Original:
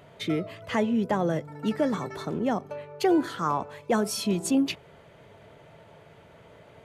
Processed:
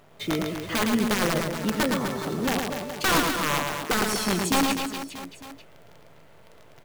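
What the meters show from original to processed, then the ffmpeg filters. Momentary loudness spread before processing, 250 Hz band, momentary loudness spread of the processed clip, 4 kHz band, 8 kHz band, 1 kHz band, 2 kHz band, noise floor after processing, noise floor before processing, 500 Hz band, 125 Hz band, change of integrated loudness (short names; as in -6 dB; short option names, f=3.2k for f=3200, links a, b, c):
7 LU, 0.0 dB, 11 LU, +9.0 dB, +8.0 dB, +3.5 dB, +10.0 dB, -51 dBFS, -53 dBFS, -0.5 dB, +2.0 dB, +2.5 dB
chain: -af "acrusher=bits=8:dc=4:mix=0:aa=0.000001,aeval=exprs='(mod(7.5*val(0)+1,2)-1)/7.5':c=same,aecho=1:1:110|247.5|419.4|634.2|902.8:0.631|0.398|0.251|0.158|0.1"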